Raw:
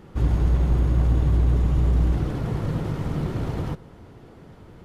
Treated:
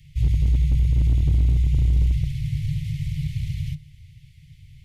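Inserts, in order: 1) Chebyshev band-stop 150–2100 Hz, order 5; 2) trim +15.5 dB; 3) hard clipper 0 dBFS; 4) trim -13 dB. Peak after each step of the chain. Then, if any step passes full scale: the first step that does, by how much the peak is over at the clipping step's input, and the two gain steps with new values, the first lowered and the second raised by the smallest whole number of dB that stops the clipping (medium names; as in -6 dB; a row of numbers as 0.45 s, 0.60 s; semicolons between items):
-11.0 dBFS, +4.5 dBFS, 0.0 dBFS, -13.0 dBFS; step 2, 4.5 dB; step 2 +10.5 dB, step 4 -8 dB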